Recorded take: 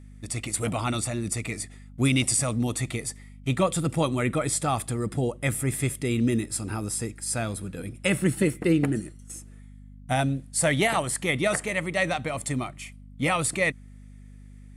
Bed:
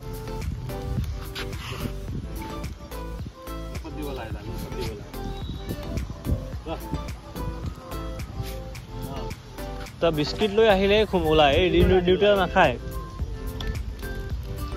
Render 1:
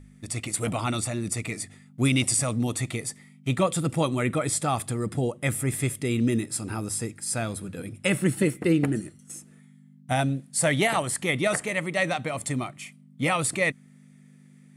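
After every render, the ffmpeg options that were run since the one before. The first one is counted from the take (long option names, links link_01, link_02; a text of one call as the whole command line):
ffmpeg -i in.wav -af "bandreject=frequency=50:width_type=h:width=4,bandreject=frequency=100:width_type=h:width=4" out.wav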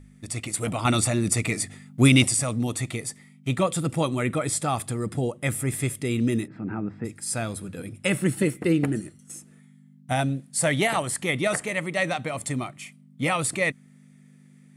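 ffmpeg -i in.wav -filter_complex "[0:a]asplit=3[link_01][link_02][link_03];[link_01]afade=type=out:start_time=6.46:duration=0.02[link_04];[link_02]highpass=110,equalizer=frequency=190:width_type=q:width=4:gain=8,equalizer=frequency=300:width_type=q:width=4:gain=4,equalizer=frequency=520:width_type=q:width=4:gain=-4,equalizer=frequency=1100:width_type=q:width=4:gain=-5,lowpass=frequency=2000:width=0.5412,lowpass=frequency=2000:width=1.3066,afade=type=in:start_time=6.46:duration=0.02,afade=type=out:start_time=7.04:duration=0.02[link_05];[link_03]afade=type=in:start_time=7.04:duration=0.02[link_06];[link_04][link_05][link_06]amix=inputs=3:normalize=0,asplit=3[link_07][link_08][link_09];[link_07]atrim=end=0.852[link_10];[link_08]atrim=start=0.848:end=2.282,asetpts=PTS-STARTPTS,volume=6dB[link_11];[link_09]atrim=start=2.278[link_12];[link_10][link_11]acrossfade=duration=0.004:curve1=hsin:curve2=hsin[link_13];[link_13][link_12]acrossfade=duration=0.004:curve1=hsin:curve2=hsin" out.wav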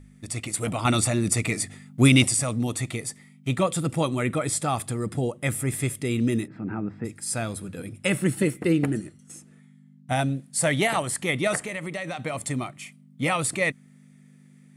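ffmpeg -i in.wav -filter_complex "[0:a]asettb=1/sr,asplit=3[link_01][link_02][link_03];[link_01]atrim=end=8.974[link_04];[link_02]atrim=start=8.97:end=10.13,asetpts=PTS-STARTPTS,afade=type=in:duration=0.004:curve=qsin,afade=type=out:start_time=1.156:duration=0.004:curve=qsin,highshelf=frequency=10000:gain=-10[link_05];[link_03]atrim=start=10.126[link_06];[link_04][link_05]acrossfade=duration=0.004:curve1=hsin:curve2=qsin[link_07];[link_07][link_06]acrossfade=duration=0.004:curve1=qsin:curve2=hsin,asettb=1/sr,asplit=3[link_08][link_09][link_10];[link_08]atrim=end=11.584[link_11];[link_09]atrim=start=11.58:end=12.24,asetpts=PTS-STARTPTS,afade=type=in:duration=0.004:curve=qsin,afade=type=out:start_time=0.656:duration=0.004:curve=qsin,acompressor=threshold=-27dB:ratio=12:attack=3.2:release=140:knee=1:detection=peak[link_12];[link_10]atrim=start=12.236[link_13];[link_11][link_12]acrossfade=duration=0.004:curve1=hsin:curve2=qsin[link_14];[link_14][link_13]acrossfade=duration=0.004:curve1=qsin:curve2=hsin" out.wav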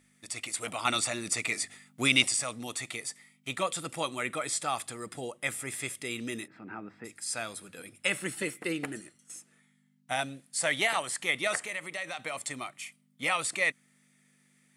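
ffmpeg -i in.wav -filter_complex "[0:a]acrossover=split=8100[link_01][link_02];[link_02]acompressor=threshold=-44dB:ratio=4:attack=1:release=60[link_03];[link_01][link_03]amix=inputs=2:normalize=0,highpass=frequency=1300:poles=1" out.wav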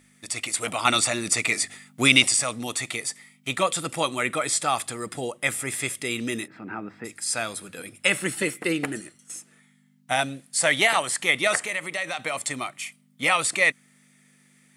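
ffmpeg -i in.wav -af "volume=7.5dB,alimiter=limit=-2dB:level=0:latency=1" out.wav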